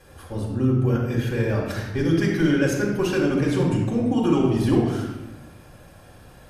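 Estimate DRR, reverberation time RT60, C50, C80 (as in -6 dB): -3.5 dB, 1.0 s, 2.0 dB, 4.0 dB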